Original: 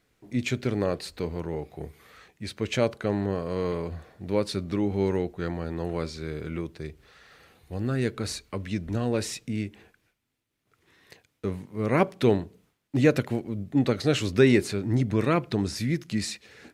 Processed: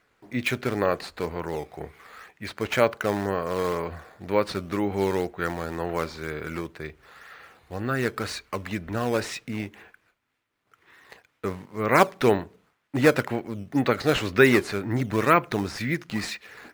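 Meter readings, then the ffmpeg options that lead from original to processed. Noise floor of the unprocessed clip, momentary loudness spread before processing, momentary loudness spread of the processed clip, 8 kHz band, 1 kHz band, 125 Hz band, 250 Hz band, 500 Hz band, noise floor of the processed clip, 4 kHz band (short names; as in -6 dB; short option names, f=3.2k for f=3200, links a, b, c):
-74 dBFS, 13 LU, 15 LU, -0.5 dB, +8.5 dB, -3.0 dB, -1.0 dB, +2.0 dB, -72 dBFS, +1.5 dB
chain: -filter_complex "[0:a]equalizer=f=1.4k:w=0.43:g=14.5,asplit=2[a][b];[b]acrusher=samples=9:mix=1:aa=0.000001:lfo=1:lforange=14.4:lforate=2,volume=-6dB[c];[a][c]amix=inputs=2:normalize=0,volume=-7.5dB"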